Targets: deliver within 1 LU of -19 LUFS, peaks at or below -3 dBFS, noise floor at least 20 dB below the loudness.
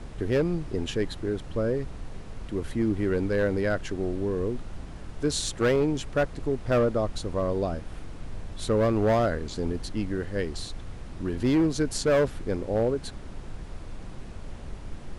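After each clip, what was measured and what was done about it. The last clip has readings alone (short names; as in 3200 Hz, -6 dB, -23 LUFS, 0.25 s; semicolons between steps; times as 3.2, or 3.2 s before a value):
clipped 1.2%; flat tops at -17.5 dBFS; noise floor -40 dBFS; noise floor target -48 dBFS; loudness -27.5 LUFS; peak -17.5 dBFS; loudness target -19.0 LUFS
-> clip repair -17.5 dBFS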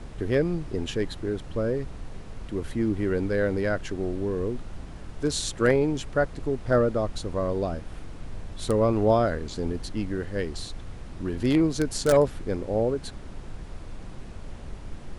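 clipped 0.0%; noise floor -40 dBFS; noise floor target -47 dBFS
-> noise print and reduce 7 dB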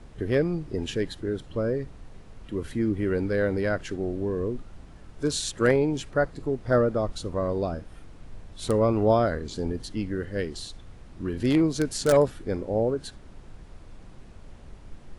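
noise floor -47 dBFS; loudness -27.0 LUFS; peak -8.5 dBFS; loudness target -19.0 LUFS
-> gain +8 dB; limiter -3 dBFS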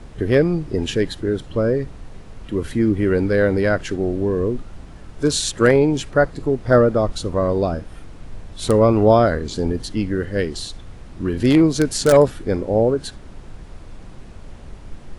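loudness -19.0 LUFS; peak -3.0 dBFS; noise floor -39 dBFS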